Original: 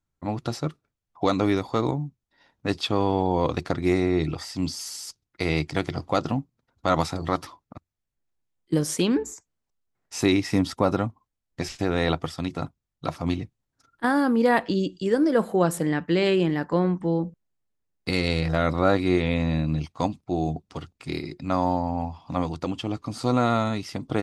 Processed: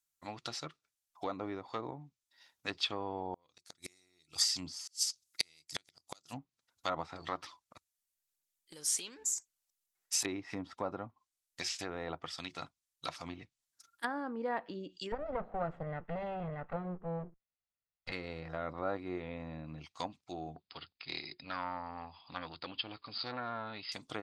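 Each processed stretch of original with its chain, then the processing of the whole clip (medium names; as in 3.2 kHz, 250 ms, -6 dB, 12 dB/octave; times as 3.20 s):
3.33–6.38 s: tone controls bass +3 dB, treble +13 dB + inverted gate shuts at -12 dBFS, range -36 dB
7.42–10.25 s: compression 12:1, threshold -31 dBFS + phaser 1 Hz, feedback 32%
15.12–18.12 s: comb filter that takes the minimum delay 1.5 ms + low-pass 2.5 kHz + bass shelf 200 Hz +11 dB
20.56–23.92 s: brick-wall FIR low-pass 5.1 kHz + transformer saturation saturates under 850 Hz
whole clip: low-pass that closes with the level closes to 920 Hz, closed at -19.5 dBFS; pre-emphasis filter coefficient 0.97; trim +7 dB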